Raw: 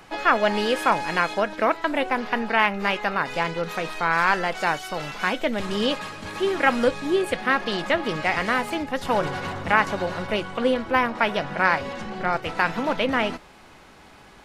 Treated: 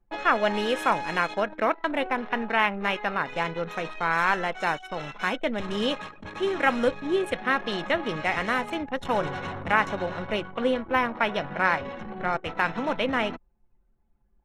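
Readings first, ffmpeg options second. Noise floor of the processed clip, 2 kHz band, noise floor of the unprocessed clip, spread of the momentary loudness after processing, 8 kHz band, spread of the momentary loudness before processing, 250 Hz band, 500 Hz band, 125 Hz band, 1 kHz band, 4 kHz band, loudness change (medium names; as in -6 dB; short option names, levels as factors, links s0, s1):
-65 dBFS, -3.0 dB, -49 dBFS, 7 LU, -6.5 dB, 7 LU, -3.0 dB, -3.0 dB, -3.0 dB, -3.0 dB, -3.5 dB, -3.0 dB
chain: -af "asuperstop=centerf=4700:order=8:qfactor=7.1,anlmdn=10,volume=0.708"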